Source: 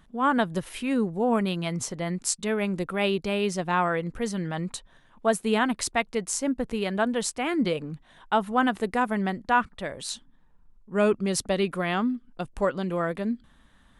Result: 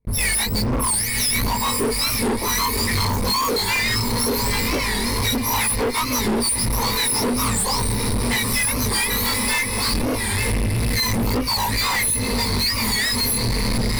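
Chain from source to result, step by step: spectrum mirrored in octaves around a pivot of 1600 Hz; wind noise 150 Hz -36 dBFS; tube stage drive 21 dB, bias 0.4; ripple EQ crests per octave 0.92, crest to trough 17 dB; on a send: diffused feedback echo 0.944 s, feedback 72%, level -13.5 dB; on the sum: gate with hold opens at -33 dBFS; compressor 10:1, threshold -31 dBFS, peak gain reduction 13.5 dB; chorus voices 2, 0.18 Hz, delay 21 ms, depth 4.3 ms; sample leveller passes 5; notch 6600 Hz, Q 15; record warp 45 rpm, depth 160 cents; gain +6.5 dB

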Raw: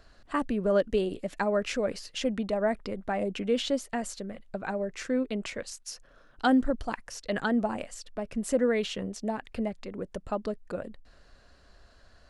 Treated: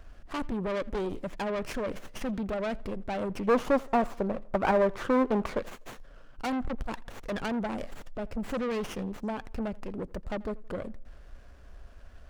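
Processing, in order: low shelf 86 Hz +11 dB; soft clip -30 dBFS, distortion -6 dB; 3.47–5.59 EQ curve 100 Hz 0 dB, 1200 Hz +15 dB, 1900 Hz 0 dB, 3300 Hz -5 dB; tape echo 84 ms, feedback 48%, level -22 dB, low-pass 2600 Hz; running maximum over 9 samples; gain +2 dB

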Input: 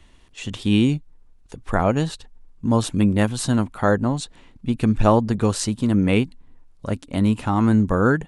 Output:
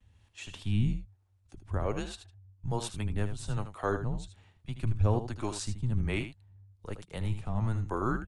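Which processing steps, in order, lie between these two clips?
harmonic tremolo 1.2 Hz, depth 70%, crossover 420 Hz; vibrato 0.48 Hz 24 cents; frequency shift -110 Hz; on a send: echo 78 ms -10 dB; on the sum: gain -9 dB

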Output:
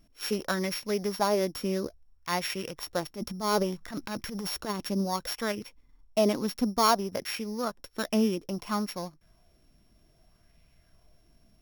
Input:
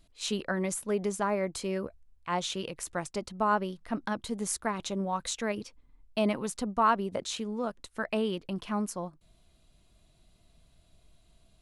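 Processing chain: sample sorter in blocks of 8 samples; 3.07–4.7 transient shaper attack -11 dB, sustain +7 dB; LFO bell 0.61 Hz 230–2400 Hz +8 dB

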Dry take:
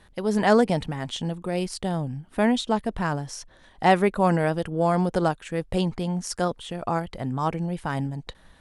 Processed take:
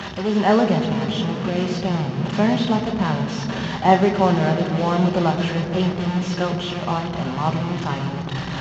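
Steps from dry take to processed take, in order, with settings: delta modulation 32 kbps, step -23.5 dBFS; reverb RT60 4.3 s, pre-delay 3 ms, DRR 3 dB; gain -7 dB

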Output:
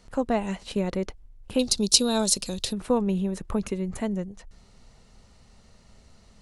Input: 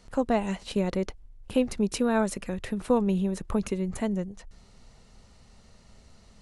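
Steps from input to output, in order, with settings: 1.59–2.73 resonant high shelf 2900 Hz +13.5 dB, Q 3

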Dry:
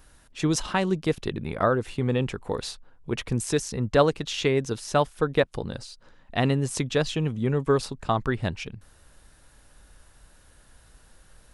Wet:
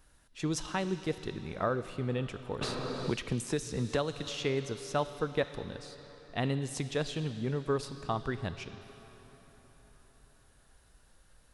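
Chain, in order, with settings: on a send at -14.5 dB: bell 4000 Hz +12 dB 1.4 oct + reverb RT60 5.0 s, pre-delay 18 ms; 2.61–4.3 on the sum: three-band squash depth 100%; gain -8.5 dB

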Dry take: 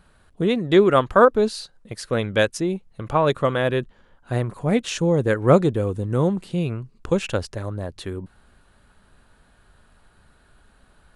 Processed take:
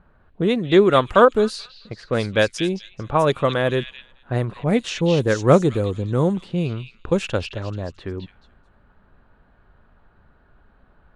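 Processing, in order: delay with a stepping band-pass 0.217 s, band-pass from 3400 Hz, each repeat 0.7 oct, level -2 dB; low-pass opened by the level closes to 1500 Hz, open at -15.5 dBFS; gain +1 dB

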